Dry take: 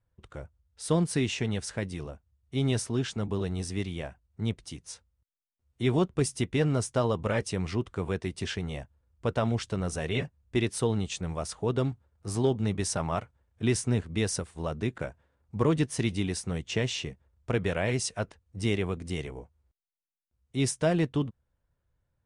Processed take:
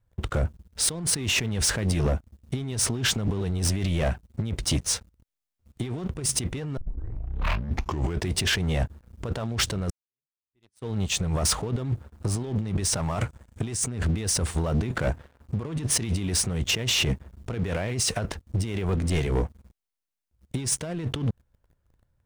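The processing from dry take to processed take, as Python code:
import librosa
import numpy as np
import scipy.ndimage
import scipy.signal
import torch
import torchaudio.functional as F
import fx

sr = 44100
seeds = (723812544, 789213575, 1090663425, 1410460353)

y = fx.peak_eq(x, sr, hz=7700.0, db=8.5, octaves=0.77, at=(13.02, 13.88))
y = fx.over_compress(y, sr, threshold_db=-36.0, ratio=-0.5, at=(18.88, 19.31), fade=0.02)
y = fx.edit(y, sr, fx.tape_start(start_s=6.77, length_s=1.52),
    fx.fade_in_span(start_s=9.9, length_s=1.35, curve='exp'), tone=tone)
y = fx.low_shelf(y, sr, hz=130.0, db=6.5)
y = fx.over_compress(y, sr, threshold_db=-37.0, ratio=-1.0)
y = fx.leveller(y, sr, passes=3)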